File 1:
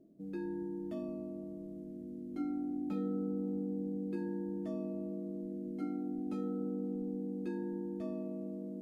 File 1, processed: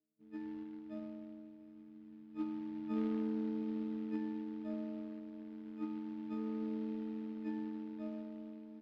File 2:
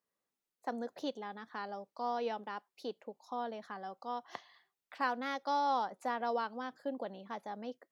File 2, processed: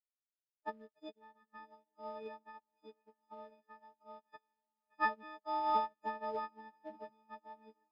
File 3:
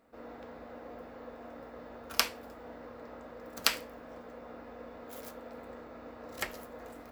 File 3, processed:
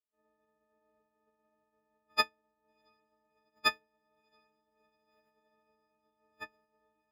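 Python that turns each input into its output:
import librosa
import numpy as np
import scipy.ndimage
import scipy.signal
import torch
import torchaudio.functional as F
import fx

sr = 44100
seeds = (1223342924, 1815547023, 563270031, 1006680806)

y = fx.freq_snap(x, sr, grid_st=6)
y = fx.highpass(y, sr, hz=68.0, slope=6)
y = fx.notch(y, sr, hz=3700.0, q=8.6)
y = fx.dynamic_eq(y, sr, hz=2300.0, q=3.4, threshold_db=-58.0, ratio=4.0, max_db=-4)
y = fx.quant_float(y, sr, bits=2)
y = fx.air_absorb(y, sr, metres=340.0)
y = fx.echo_diffused(y, sr, ms=682, feedback_pct=63, wet_db=-15.0)
y = fx.upward_expand(y, sr, threshold_db=-53.0, expansion=2.5)
y = F.gain(torch.from_numpy(y), 1.0).numpy()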